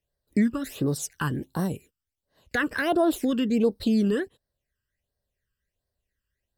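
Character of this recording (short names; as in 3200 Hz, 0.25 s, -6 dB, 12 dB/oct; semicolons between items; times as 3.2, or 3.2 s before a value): phasing stages 12, 1.4 Hz, lowest notch 670–2500 Hz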